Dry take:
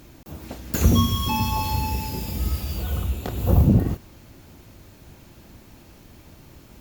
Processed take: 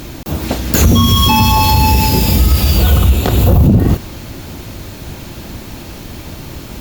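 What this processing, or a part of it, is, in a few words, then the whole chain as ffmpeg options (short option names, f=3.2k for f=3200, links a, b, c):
mastering chain: -af "equalizer=f=3.8k:t=o:w=0.77:g=3,acompressor=threshold=-20dB:ratio=3,asoftclip=type=tanh:threshold=-14dB,alimiter=level_in=19.5dB:limit=-1dB:release=50:level=0:latency=1,volume=-1dB"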